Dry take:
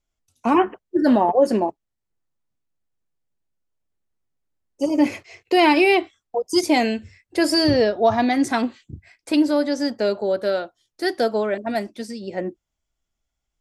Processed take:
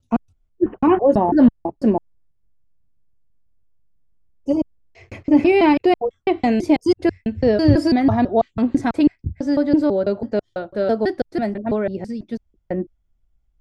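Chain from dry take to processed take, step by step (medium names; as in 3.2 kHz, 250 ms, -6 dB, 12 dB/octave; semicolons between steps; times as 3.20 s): slices played last to first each 165 ms, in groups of 3; RIAA curve playback; trim -1.5 dB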